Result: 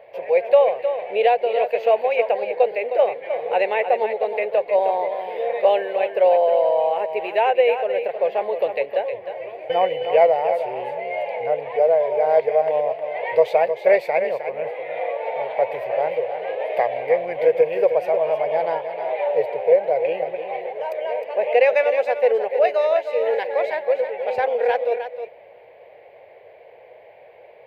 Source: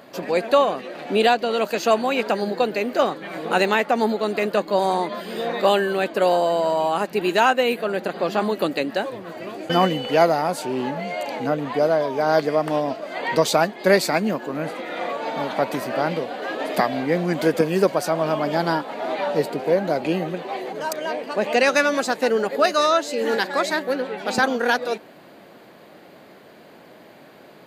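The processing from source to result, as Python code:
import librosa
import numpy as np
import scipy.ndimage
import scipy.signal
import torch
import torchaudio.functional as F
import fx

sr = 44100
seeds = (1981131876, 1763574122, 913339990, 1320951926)

y = fx.curve_eq(x, sr, hz=(100.0, 180.0, 280.0, 480.0, 900.0, 1300.0, 2200.0, 4100.0, 7100.0, 13000.0), db=(0, -19, -25, 9, 2, -15, 6, -15, -27, -16))
y = y + 10.0 ** (-9.0 / 20.0) * np.pad(y, (int(311 * sr / 1000.0), 0))[:len(y)]
y = y * librosa.db_to_amplitude(-3.5)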